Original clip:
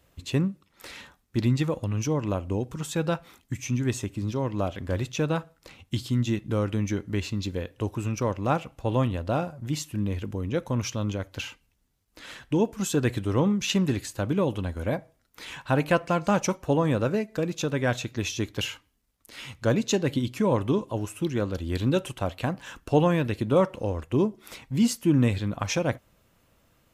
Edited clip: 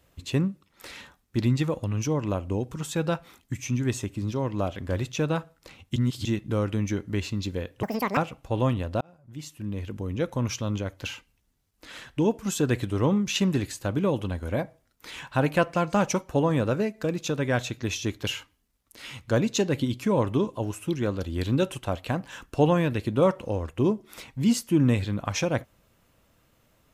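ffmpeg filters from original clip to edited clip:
ffmpeg -i in.wav -filter_complex "[0:a]asplit=6[link_01][link_02][link_03][link_04][link_05][link_06];[link_01]atrim=end=5.962[link_07];[link_02]atrim=start=5.958:end=6.252,asetpts=PTS-STARTPTS,areverse[link_08];[link_03]atrim=start=6.248:end=7.834[link_09];[link_04]atrim=start=7.83:end=8.51,asetpts=PTS-STARTPTS,asetrate=88200,aresample=44100[link_10];[link_05]atrim=start=8.506:end=9.35,asetpts=PTS-STARTPTS,afade=type=out:start_time=0.84:duration=0.004:curve=hsin[link_11];[link_06]atrim=start=9.35,asetpts=PTS-STARTPTS,afade=type=in:duration=1.16[link_12];[link_07][link_08]acrossfade=duration=0.004:curve1=hsin:curve2=hsin[link_13];[link_13][link_09]acrossfade=duration=0.004:curve1=hsin:curve2=hsin[link_14];[link_14][link_10]acrossfade=duration=0.004:curve1=hsin:curve2=hsin[link_15];[link_11][link_12]concat=n=2:v=0:a=1[link_16];[link_15][link_16]acrossfade=duration=0.004:curve1=hsin:curve2=hsin" out.wav

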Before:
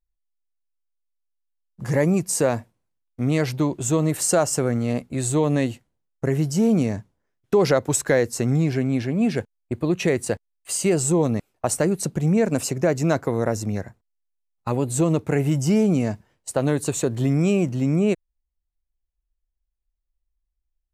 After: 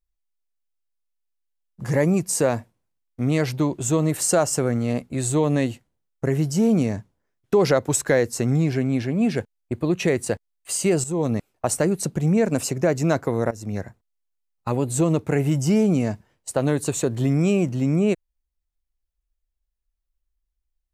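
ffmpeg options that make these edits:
ffmpeg -i in.wav -filter_complex "[0:a]asplit=3[link_01][link_02][link_03];[link_01]atrim=end=11.04,asetpts=PTS-STARTPTS,afade=type=out:start_time=11.036:duration=0.004:curve=hsin:silence=0.223872[link_04];[link_02]atrim=start=11.04:end=13.51,asetpts=PTS-STARTPTS,afade=type=in:duration=0.28:silence=0.223872,afade=type=out:start_time=2.466:duration=0.004:curve=hsin:silence=0.125893[link_05];[link_03]atrim=start=13.51,asetpts=PTS-STARTPTS,afade=type=in:duration=0.29:silence=0.125893[link_06];[link_04][link_05][link_06]concat=n=3:v=0:a=1" out.wav

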